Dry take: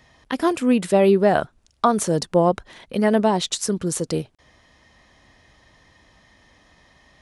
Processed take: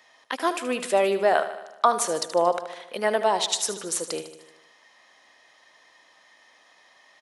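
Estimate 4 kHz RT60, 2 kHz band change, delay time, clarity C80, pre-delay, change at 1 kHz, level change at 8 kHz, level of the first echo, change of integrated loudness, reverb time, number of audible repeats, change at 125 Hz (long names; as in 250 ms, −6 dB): no reverb audible, +0.5 dB, 76 ms, no reverb audible, no reverb audible, −0.5 dB, +0.5 dB, −12.0 dB, −4.0 dB, no reverb audible, 6, −19.5 dB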